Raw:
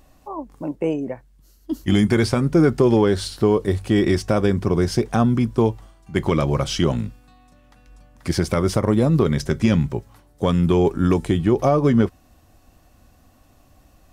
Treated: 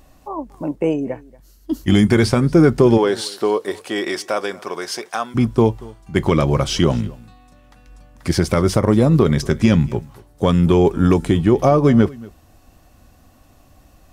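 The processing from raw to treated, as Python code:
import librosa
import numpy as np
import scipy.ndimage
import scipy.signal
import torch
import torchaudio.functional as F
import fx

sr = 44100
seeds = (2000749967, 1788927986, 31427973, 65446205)

y = fx.highpass(x, sr, hz=fx.line((2.97, 360.0), (5.34, 920.0)), slope=12, at=(2.97, 5.34), fade=0.02)
y = y + 10.0 ** (-22.5 / 20.0) * np.pad(y, (int(233 * sr / 1000.0), 0))[:len(y)]
y = y * 10.0 ** (3.5 / 20.0)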